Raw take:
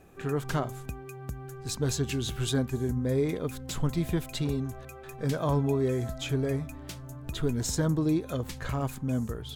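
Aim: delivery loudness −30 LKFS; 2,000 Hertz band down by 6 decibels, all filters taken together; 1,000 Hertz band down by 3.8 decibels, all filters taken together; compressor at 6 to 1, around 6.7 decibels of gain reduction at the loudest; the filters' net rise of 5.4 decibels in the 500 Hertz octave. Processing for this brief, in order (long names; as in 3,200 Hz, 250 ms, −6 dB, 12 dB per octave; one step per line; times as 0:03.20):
parametric band 500 Hz +8.5 dB
parametric band 1,000 Hz −7.5 dB
parametric band 2,000 Hz −6 dB
downward compressor 6 to 1, threshold −26 dBFS
level +2.5 dB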